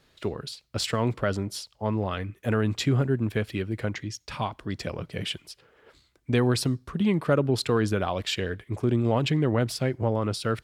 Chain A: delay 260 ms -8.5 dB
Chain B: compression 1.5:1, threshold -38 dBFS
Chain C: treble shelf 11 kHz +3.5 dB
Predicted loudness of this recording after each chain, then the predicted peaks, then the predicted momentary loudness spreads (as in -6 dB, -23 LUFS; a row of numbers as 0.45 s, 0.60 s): -27.0 LUFS, -33.5 LUFS, -27.5 LUFS; -10.5 dBFS, -17.0 dBFS, -11.0 dBFS; 10 LU, 8 LU, 10 LU